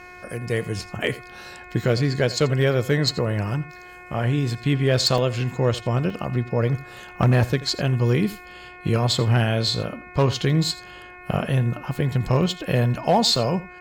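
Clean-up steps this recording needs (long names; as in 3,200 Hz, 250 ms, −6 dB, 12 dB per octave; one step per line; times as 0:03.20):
clipped peaks rebuilt −11 dBFS
hum removal 360.4 Hz, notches 7
repair the gap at 0:05.18/0:06.10/0:13.36, 2.3 ms
echo removal 84 ms −18 dB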